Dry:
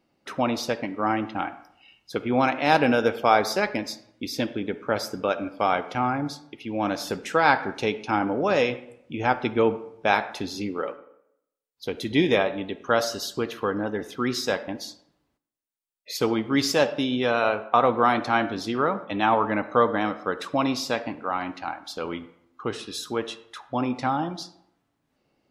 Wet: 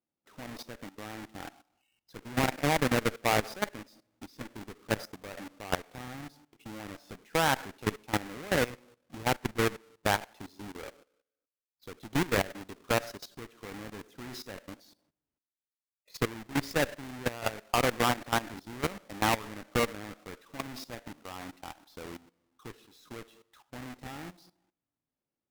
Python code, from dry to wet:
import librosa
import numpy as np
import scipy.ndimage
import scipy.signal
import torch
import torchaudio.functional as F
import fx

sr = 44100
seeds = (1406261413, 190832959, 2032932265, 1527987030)

y = fx.halfwave_hold(x, sr)
y = fx.dynamic_eq(y, sr, hz=1900.0, q=1.8, threshold_db=-35.0, ratio=4.0, max_db=5)
y = fx.cheby_harmonics(y, sr, harmonics=(6, 7), levels_db=(-20, -23), full_scale_db=-1.0)
y = fx.level_steps(y, sr, step_db=17)
y = y * librosa.db_to_amplitude(-8.0)